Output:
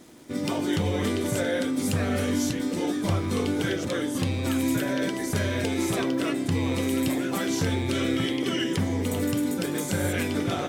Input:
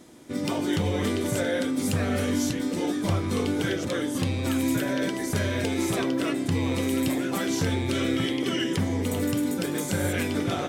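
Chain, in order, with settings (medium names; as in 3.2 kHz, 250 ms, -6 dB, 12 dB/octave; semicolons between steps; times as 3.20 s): crackle 330 per s -45 dBFS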